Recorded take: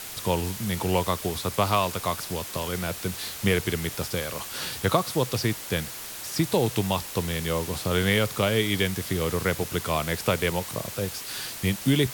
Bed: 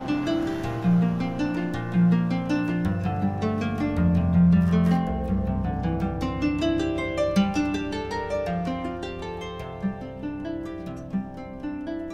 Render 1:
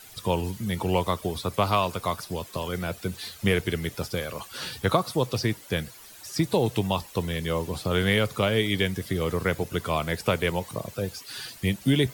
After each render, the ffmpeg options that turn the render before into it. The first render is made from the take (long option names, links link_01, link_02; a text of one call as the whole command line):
ffmpeg -i in.wav -af "afftdn=noise_reduction=13:noise_floor=-38" out.wav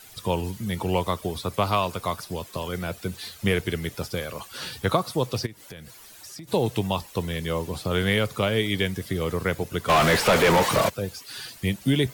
ffmpeg -i in.wav -filter_complex "[0:a]asplit=3[link_01][link_02][link_03];[link_01]afade=type=out:start_time=5.45:duration=0.02[link_04];[link_02]acompressor=threshold=-38dB:ratio=6:attack=3.2:release=140:knee=1:detection=peak,afade=type=in:start_time=5.45:duration=0.02,afade=type=out:start_time=6.47:duration=0.02[link_05];[link_03]afade=type=in:start_time=6.47:duration=0.02[link_06];[link_04][link_05][link_06]amix=inputs=3:normalize=0,asplit=3[link_07][link_08][link_09];[link_07]afade=type=out:start_time=9.88:duration=0.02[link_10];[link_08]asplit=2[link_11][link_12];[link_12]highpass=frequency=720:poles=1,volume=37dB,asoftclip=type=tanh:threshold=-10dB[link_13];[link_11][link_13]amix=inputs=2:normalize=0,lowpass=frequency=2300:poles=1,volume=-6dB,afade=type=in:start_time=9.88:duration=0.02,afade=type=out:start_time=10.88:duration=0.02[link_14];[link_09]afade=type=in:start_time=10.88:duration=0.02[link_15];[link_10][link_14][link_15]amix=inputs=3:normalize=0" out.wav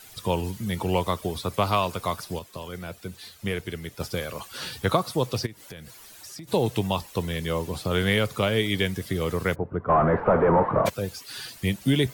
ffmpeg -i in.wav -filter_complex "[0:a]asplit=3[link_01][link_02][link_03];[link_01]afade=type=out:start_time=9.54:duration=0.02[link_04];[link_02]lowpass=frequency=1300:width=0.5412,lowpass=frequency=1300:width=1.3066,afade=type=in:start_time=9.54:duration=0.02,afade=type=out:start_time=10.85:duration=0.02[link_05];[link_03]afade=type=in:start_time=10.85:duration=0.02[link_06];[link_04][link_05][link_06]amix=inputs=3:normalize=0,asplit=3[link_07][link_08][link_09];[link_07]atrim=end=2.392[link_10];[link_08]atrim=start=2.388:end=4.002,asetpts=PTS-STARTPTS,volume=-6dB[link_11];[link_09]atrim=start=3.998[link_12];[link_10][link_11]acrossfade=duration=0.004:curve1=hsin:curve2=hsin[link_13];[link_13][link_12]acrossfade=duration=0.004:curve1=hsin:curve2=hsin" out.wav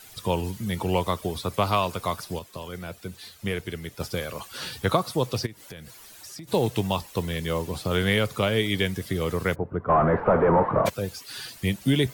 ffmpeg -i in.wav -filter_complex "[0:a]asettb=1/sr,asplit=3[link_01][link_02][link_03];[link_01]atrim=end=6.544[link_04];[link_02]atrim=start=6.54:end=7.97,asetpts=PTS-STARTPTS,afade=type=in:duration=0.004:curve=qsin,afade=type=out:start_time=1.426:duration=0.004:curve=qsin,acrusher=bits=6:mode=log:mix=0:aa=0.000001[link_05];[link_03]atrim=start=7.966[link_06];[link_04][link_05]acrossfade=duration=0.004:curve1=hsin:curve2=qsin[link_07];[link_07][link_06]acrossfade=duration=0.004:curve1=qsin:curve2=hsin" out.wav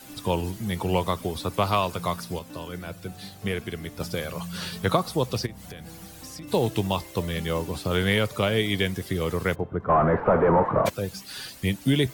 ffmpeg -i in.wav -i bed.wav -filter_complex "[1:a]volume=-19dB[link_01];[0:a][link_01]amix=inputs=2:normalize=0" out.wav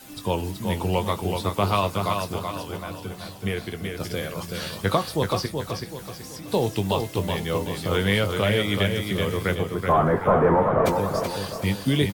ffmpeg -i in.wav -filter_complex "[0:a]asplit=2[link_01][link_02];[link_02]adelay=20,volume=-11dB[link_03];[link_01][link_03]amix=inputs=2:normalize=0,aecho=1:1:378|756|1134|1512|1890:0.562|0.225|0.09|0.036|0.0144" out.wav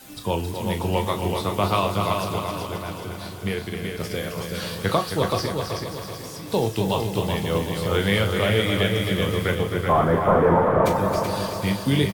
ffmpeg -i in.wav -filter_complex "[0:a]asplit=2[link_01][link_02];[link_02]adelay=36,volume=-9.5dB[link_03];[link_01][link_03]amix=inputs=2:normalize=0,asplit=2[link_04][link_05];[link_05]aecho=0:1:267|534|801|1068|1335|1602:0.422|0.215|0.11|0.0559|0.0285|0.0145[link_06];[link_04][link_06]amix=inputs=2:normalize=0" out.wav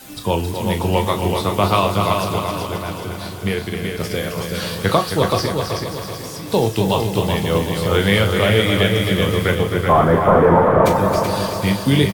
ffmpeg -i in.wav -af "volume=5.5dB,alimiter=limit=-2dB:level=0:latency=1" out.wav